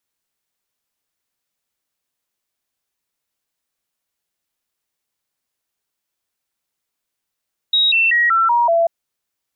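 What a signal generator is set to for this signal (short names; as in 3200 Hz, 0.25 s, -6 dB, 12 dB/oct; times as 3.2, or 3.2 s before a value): stepped sine 3800 Hz down, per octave 2, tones 6, 0.19 s, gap 0.00 s -11.5 dBFS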